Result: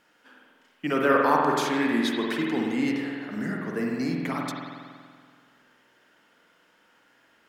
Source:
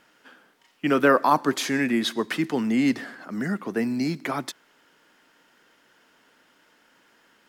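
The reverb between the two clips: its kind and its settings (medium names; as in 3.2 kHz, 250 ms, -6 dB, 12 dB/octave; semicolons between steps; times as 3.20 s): spring tank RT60 1.9 s, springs 47 ms, chirp 45 ms, DRR -1.5 dB; trim -5 dB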